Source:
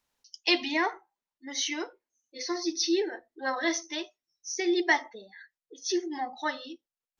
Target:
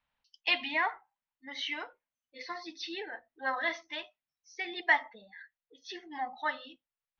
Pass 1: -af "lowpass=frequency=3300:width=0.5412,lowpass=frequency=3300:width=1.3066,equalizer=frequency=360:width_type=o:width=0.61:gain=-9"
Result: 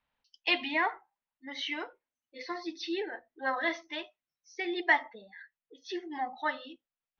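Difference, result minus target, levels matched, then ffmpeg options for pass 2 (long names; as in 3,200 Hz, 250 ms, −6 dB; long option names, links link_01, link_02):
500 Hz band +4.0 dB
-af "lowpass=frequency=3300:width=0.5412,lowpass=frequency=3300:width=1.3066,equalizer=frequency=360:width_type=o:width=0.61:gain=-20"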